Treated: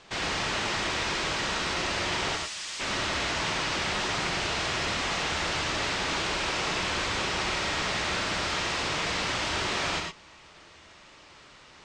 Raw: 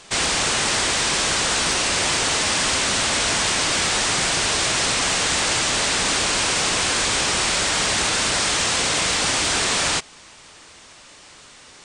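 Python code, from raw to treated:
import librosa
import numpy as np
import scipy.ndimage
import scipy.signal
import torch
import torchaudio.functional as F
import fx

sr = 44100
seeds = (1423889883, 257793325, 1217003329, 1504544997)

p1 = fx.pre_emphasis(x, sr, coefficient=0.97, at=(2.35, 2.79), fade=0.02)
p2 = (np.mod(10.0 ** (19.0 / 20.0) * p1 + 1.0, 2.0) - 1.0) / 10.0 ** (19.0 / 20.0)
p3 = p1 + (p2 * librosa.db_to_amplitude(-10.0))
p4 = fx.air_absorb(p3, sr, metres=130.0)
p5 = fx.rev_gated(p4, sr, seeds[0], gate_ms=130, shape='rising', drr_db=2.0)
y = p5 * librosa.db_to_amplitude(-8.0)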